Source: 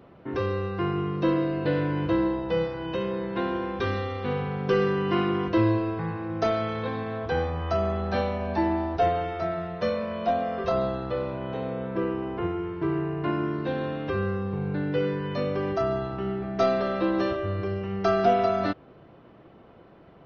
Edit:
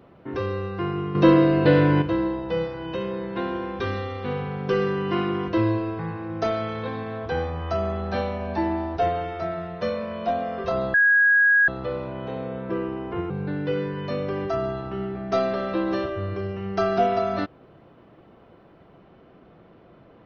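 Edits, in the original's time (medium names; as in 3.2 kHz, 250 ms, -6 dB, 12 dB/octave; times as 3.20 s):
1.15–2.02 s: gain +8.5 dB
10.94 s: add tone 1.65 kHz -14 dBFS 0.74 s
12.56–14.57 s: delete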